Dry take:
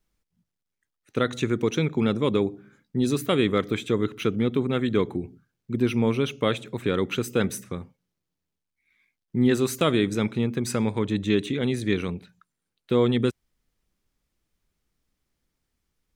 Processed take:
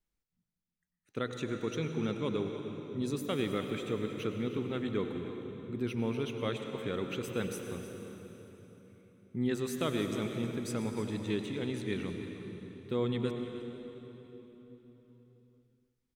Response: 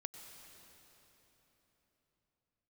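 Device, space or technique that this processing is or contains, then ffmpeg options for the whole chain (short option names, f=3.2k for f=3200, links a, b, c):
cave: -filter_complex "[0:a]aecho=1:1:310:0.188[a];[1:a]atrim=start_sample=2205[b];[a][b]afir=irnorm=-1:irlink=0,volume=-7dB"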